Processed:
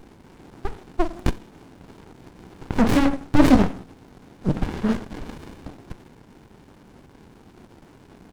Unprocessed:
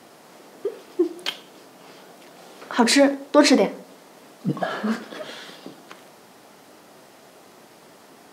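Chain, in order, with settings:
downsampling to 22,050 Hz
windowed peak hold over 65 samples
level +4.5 dB

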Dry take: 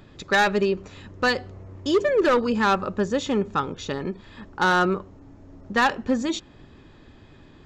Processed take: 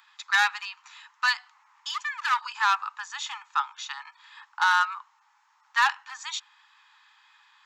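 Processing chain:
Butterworth high-pass 850 Hz 96 dB per octave

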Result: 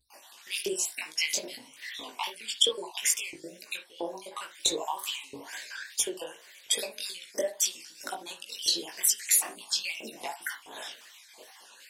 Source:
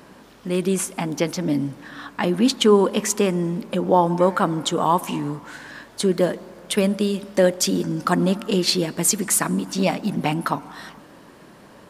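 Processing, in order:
time-frequency cells dropped at random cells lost 44%
downward compressor 6 to 1, threshold −28 dBFS, peak gain reduction 15.5 dB
mains-hum notches 60/120/180 Hz
auto-filter high-pass saw up 1.5 Hz 450–2,800 Hz
tape wow and flutter 140 cents
notch filter 1,300 Hz, Q 10
noise gate with hold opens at −46 dBFS
drawn EQ curve 180 Hz 0 dB, 340 Hz +3 dB, 1,200 Hz −8 dB, 2,900 Hz +7 dB, 6,000 Hz +11 dB
on a send at −8.5 dB: convolution reverb, pre-delay 32 ms
on the sum: chorus effect 2.5 Hz, delay 17 ms, depth 4.3 ms
parametric band 72 Hz +11 dB 1 octave

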